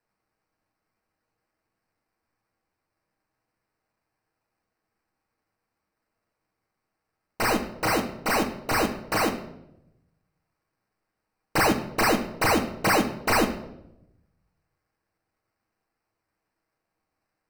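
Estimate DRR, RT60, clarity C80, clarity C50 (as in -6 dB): 2.5 dB, 0.85 s, 13.5 dB, 10.5 dB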